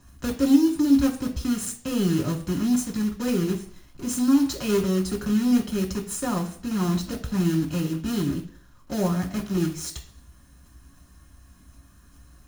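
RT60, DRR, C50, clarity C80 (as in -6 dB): 0.55 s, 0.5 dB, 11.5 dB, 15.0 dB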